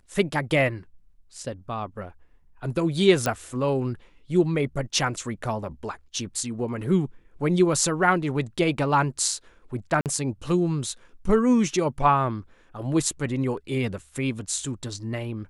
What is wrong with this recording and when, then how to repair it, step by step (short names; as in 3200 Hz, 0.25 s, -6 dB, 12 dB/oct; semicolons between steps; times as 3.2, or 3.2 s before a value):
3.26 pop -10 dBFS
10.01–10.06 gap 48 ms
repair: de-click; interpolate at 10.01, 48 ms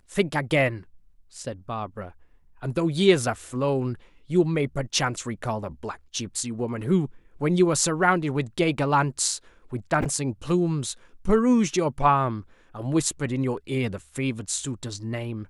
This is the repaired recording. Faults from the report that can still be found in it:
none